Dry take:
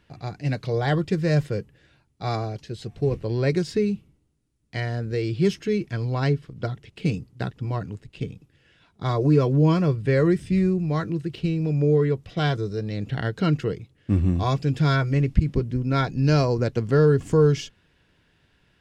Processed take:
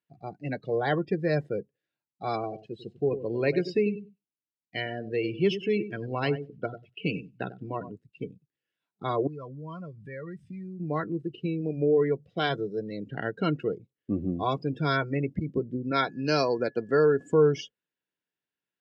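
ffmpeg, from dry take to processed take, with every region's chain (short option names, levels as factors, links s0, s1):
-filter_complex "[0:a]asettb=1/sr,asplit=3[s0][s1][s2];[s0]atrim=end=2.344[s3];[s1]atrim=start=2.34:end=7.92,asetpts=PTS-STARTPTS,afade=t=in:d=0.004:c=qsin,afade=t=out:st=5.576:d=0.004:c=qsin,equalizer=f=2800:t=o:w=0.34:g=9,aecho=1:1:96|192|288:0.282|0.0676|0.0162,atrim=end_sample=246078[s4];[s2]atrim=start=7.916[s5];[s3][s4]acrossfade=d=0.004:c1=hsin:c2=qsin[s6];[s6][s5]acrossfade=d=0.004:c1=qsin:c2=hsin,asettb=1/sr,asplit=3[s7][s8][s9];[s7]atrim=end=9.274[s10];[s8]atrim=start=9.27:end=10.8,asetpts=PTS-STARTPTS,afade=t=in:d=0.004:c=qsin,afade=t=out:st=1.526:d=0.004:c=qsin,equalizer=f=350:t=o:w=1.2:g=-13,acompressor=threshold=0.0282:ratio=4:attack=3.2:release=140:knee=1:detection=peak[s11];[s9]atrim=start=10.796[s12];[s10][s11]acrossfade=d=0.004:c1=hsin:c2=qsin[s13];[s13][s12]acrossfade=d=0.004:c1=qsin:c2=hsin,asettb=1/sr,asplit=3[s14][s15][s16];[s14]atrim=end=11.604[s17];[s15]atrim=start=11.6:end=13.09,asetpts=PTS-STARTPTS,afade=t=in:d=0.004:c=qsin,afade=t=out:st=1.486:d=0.004:c=qsin,highshelf=f=2200:g=2.5,bandreject=f=50:t=h:w=6,bandreject=f=100:t=h:w=6,bandreject=f=150:t=h:w=6[s18];[s16]atrim=start=13.086[s19];[s17][s18]acrossfade=d=0.004:c1=hsin:c2=qsin[s20];[s20][s19]acrossfade=d=0.004:c1=qsin:c2=hsin,asettb=1/sr,asplit=3[s21][s22][s23];[s21]atrim=end=15.914[s24];[s22]atrim=start=15.91:end=17.32,asetpts=PTS-STARTPTS,afade=t=in:d=0.004:c=qsin,afade=t=out:st=1.406:d=0.004:c=qsin,highpass=f=210:p=1,equalizer=f=5000:w=0.36:g=3.5,aeval=exprs='val(0)+0.00251*sin(2*PI*1700*n/s)':c=same[s25];[s23]atrim=start=17.316[s26];[s24][s25]acrossfade=d=0.004:c1=hsin:c2=qsin[s27];[s27][s26]acrossfade=d=0.004:c1=qsin:c2=hsin,afftdn=nr=27:nf=-34,highpass=240,volume=0.891"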